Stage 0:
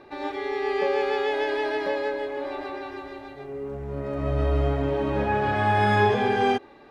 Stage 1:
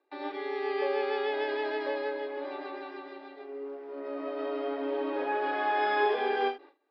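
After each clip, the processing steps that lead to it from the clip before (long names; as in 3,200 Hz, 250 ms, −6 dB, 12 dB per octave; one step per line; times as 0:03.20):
noise gate with hold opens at −38 dBFS
Chebyshev band-pass filter 280–5,100 Hz, order 5
every ending faded ahead of time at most 220 dB per second
level −5 dB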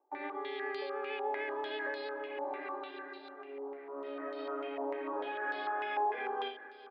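downward compressor, threshold −31 dBFS, peak gain reduction 9.5 dB
repeating echo 416 ms, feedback 47%, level −15.5 dB
low-pass on a step sequencer 6.7 Hz 870–4,200 Hz
level −5.5 dB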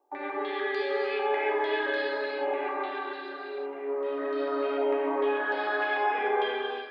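convolution reverb, pre-delay 3 ms, DRR −2 dB
level +4.5 dB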